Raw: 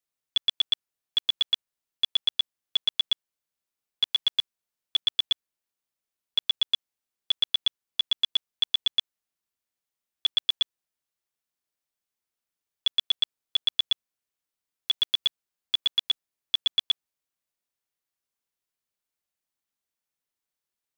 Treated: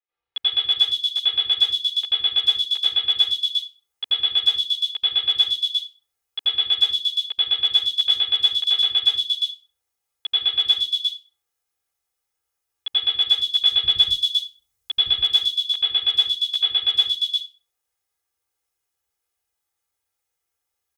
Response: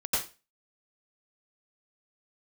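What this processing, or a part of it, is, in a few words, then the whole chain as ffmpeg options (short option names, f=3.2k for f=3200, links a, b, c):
microphone above a desk: -filter_complex "[0:a]asettb=1/sr,asplit=3[a][b][c];[a]atrim=end=13.574[d];[b]atrim=start=13.57:end=15.03,asetpts=PTS-STARTPTS,afade=t=in:d=0.004:c=qsin,afade=t=out:st=1.456:d=0.004:c=qsin,bass=f=250:g=13,treble=f=4k:g=5[e];[c]atrim=start=15.026[f];[d][e]acrossfade=d=0.004:c1=hsin:c2=qsin[g];[g][f]acrossfade=d=0.004:c1=qsin:c2=hsin,aecho=1:1:2.4:0.76[h];[1:a]atrim=start_sample=2205[i];[h][i]afir=irnorm=-1:irlink=0,acrossover=split=330|3600[j][k][l];[j]adelay=80[m];[l]adelay=350[n];[m][k][n]amix=inputs=3:normalize=0,volume=-1.5dB"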